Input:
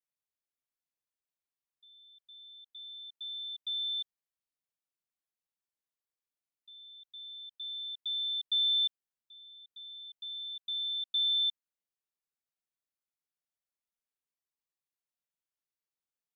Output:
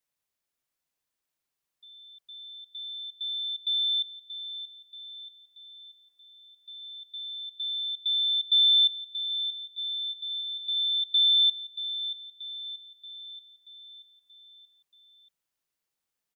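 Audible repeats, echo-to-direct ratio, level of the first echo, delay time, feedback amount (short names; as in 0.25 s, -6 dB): 5, -10.0 dB, -11.5 dB, 0.631 s, 54%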